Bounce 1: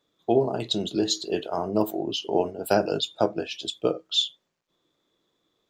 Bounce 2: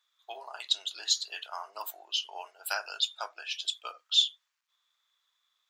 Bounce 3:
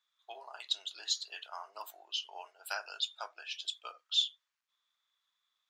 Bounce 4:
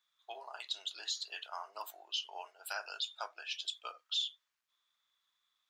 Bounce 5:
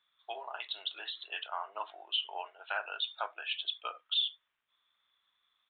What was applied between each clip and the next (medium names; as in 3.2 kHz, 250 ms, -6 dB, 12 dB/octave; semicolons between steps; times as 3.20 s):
high-pass 1.1 kHz 24 dB/octave
treble shelf 11 kHz -10 dB; trim -5 dB
peak limiter -27 dBFS, peak gain reduction 9 dB; trim +1 dB
resampled via 8 kHz; trim +5.5 dB